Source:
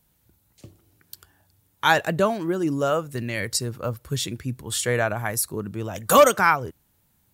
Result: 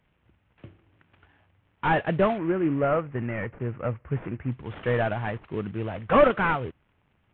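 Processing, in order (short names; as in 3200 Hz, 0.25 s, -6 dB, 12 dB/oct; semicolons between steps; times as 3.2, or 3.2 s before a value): CVSD 16 kbps; 2.38–4.52 LPF 2300 Hz 24 dB/oct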